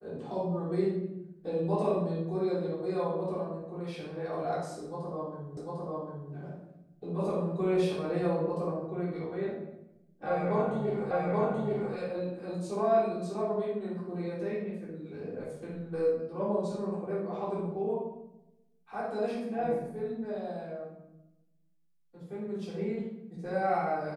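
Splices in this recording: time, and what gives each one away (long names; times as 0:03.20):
0:05.57: the same again, the last 0.75 s
0:11.11: the same again, the last 0.83 s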